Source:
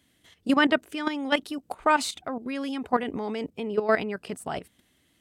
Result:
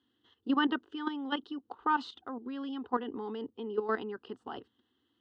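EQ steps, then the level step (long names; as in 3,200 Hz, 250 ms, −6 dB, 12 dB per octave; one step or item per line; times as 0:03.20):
loudspeaker in its box 120–3,700 Hz, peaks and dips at 120 Hz +5 dB, 220 Hz +5 dB, 600 Hz +3 dB, 3,000 Hz +8 dB
phaser with its sweep stopped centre 620 Hz, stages 6
−5.5 dB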